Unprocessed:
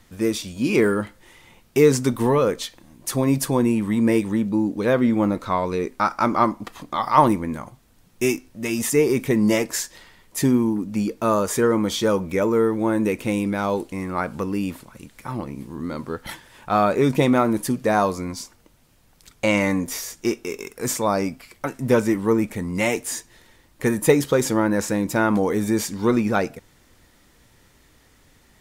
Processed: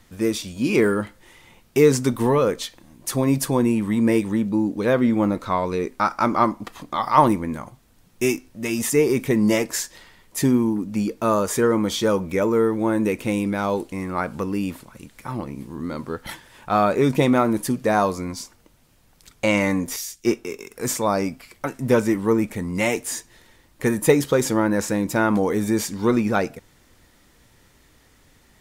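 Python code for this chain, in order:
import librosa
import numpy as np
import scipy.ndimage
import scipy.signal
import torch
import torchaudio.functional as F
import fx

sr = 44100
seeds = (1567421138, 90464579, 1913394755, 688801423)

y = fx.band_widen(x, sr, depth_pct=70, at=(19.96, 20.71))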